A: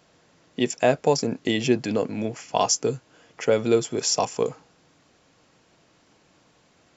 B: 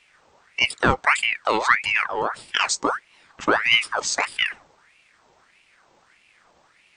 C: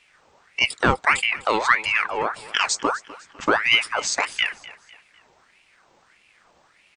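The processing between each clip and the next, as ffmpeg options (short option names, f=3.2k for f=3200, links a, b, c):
-af "lowshelf=f=230:g=11,aeval=exprs='val(0)*sin(2*PI*1600*n/s+1600*0.6/1.6*sin(2*PI*1.6*n/s))':c=same,volume=1dB"
-af "aecho=1:1:251|502|753:0.112|0.046|0.0189"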